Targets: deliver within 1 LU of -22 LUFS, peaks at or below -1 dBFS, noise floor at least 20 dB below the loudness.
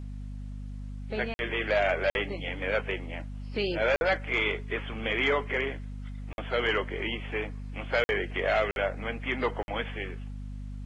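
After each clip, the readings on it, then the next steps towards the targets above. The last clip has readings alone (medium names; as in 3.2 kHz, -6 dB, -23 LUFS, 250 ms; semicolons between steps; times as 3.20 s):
dropouts 7; longest dropout 51 ms; hum 50 Hz; highest harmonic 250 Hz; hum level -36 dBFS; loudness -29.5 LUFS; peak level -15.5 dBFS; loudness target -22.0 LUFS
-> interpolate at 1.34/2.10/3.96/6.33/8.04/8.71/9.63 s, 51 ms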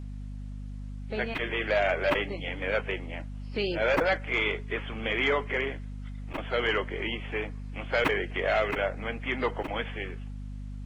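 dropouts 0; hum 50 Hz; highest harmonic 250 Hz; hum level -36 dBFS
-> hum notches 50/100/150/200/250 Hz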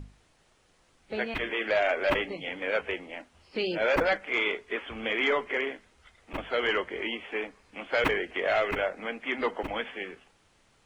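hum not found; loudness -29.5 LUFS; peak level -12.5 dBFS; loudness target -22.0 LUFS
-> trim +7.5 dB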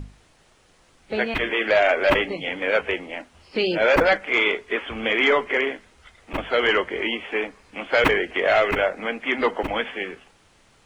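loudness -22.0 LUFS; peak level -5.0 dBFS; noise floor -58 dBFS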